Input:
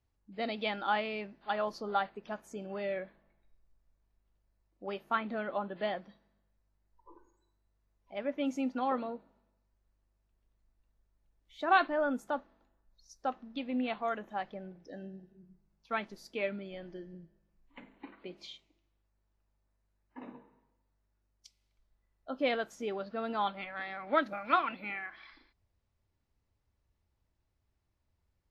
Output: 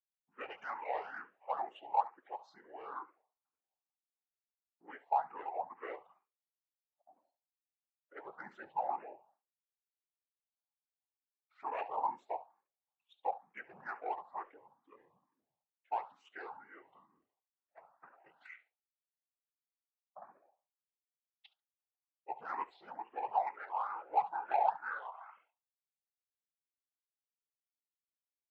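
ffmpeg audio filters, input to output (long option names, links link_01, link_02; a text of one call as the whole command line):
ffmpeg -i in.wav -filter_complex "[0:a]agate=range=-33dB:threshold=-58dB:ratio=3:detection=peak,highshelf=frequency=4700:gain=11.5,alimiter=level_in=0.5dB:limit=-24dB:level=0:latency=1:release=20,volume=-0.5dB,asetrate=27781,aresample=44100,atempo=1.5874,afftfilt=real='hypot(re,im)*cos(2*PI*random(0))':imag='hypot(re,im)*sin(2*PI*random(1))':win_size=512:overlap=0.75,highpass=frequency=810:width_type=q:width=5.3,adynamicsmooth=sensitivity=2:basefreq=2300,aecho=1:1:70|140:0.126|0.0214,asplit=2[link_01][link_02];[link_02]afreqshift=2.2[link_03];[link_01][link_03]amix=inputs=2:normalize=1,volume=3dB" out.wav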